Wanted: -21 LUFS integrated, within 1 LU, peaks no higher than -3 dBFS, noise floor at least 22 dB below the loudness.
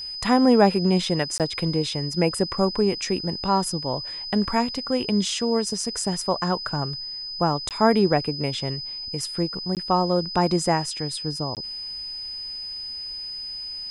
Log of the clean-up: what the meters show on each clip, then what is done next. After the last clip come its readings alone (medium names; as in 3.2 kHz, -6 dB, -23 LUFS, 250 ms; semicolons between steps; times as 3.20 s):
dropouts 4; longest dropout 18 ms; steady tone 5 kHz; tone level -31 dBFS; loudness -24.0 LUFS; peak level -4.0 dBFS; loudness target -21.0 LUFS
-> interpolate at 1.38/7.69/9.75/11.55 s, 18 ms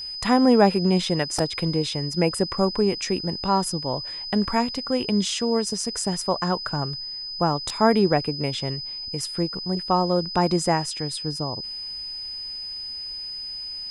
dropouts 0; steady tone 5 kHz; tone level -31 dBFS
-> band-stop 5 kHz, Q 30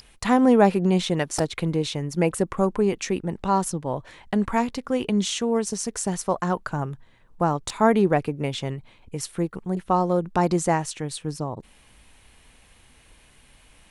steady tone not found; loudness -24.0 LUFS; peak level -4.0 dBFS; loudness target -21.0 LUFS
-> trim +3 dB; peak limiter -3 dBFS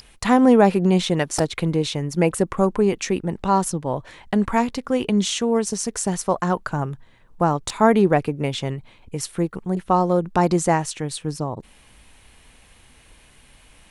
loudness -21.5 LUFS; peak level -3.0 dBFS; noise floor -52 dBFS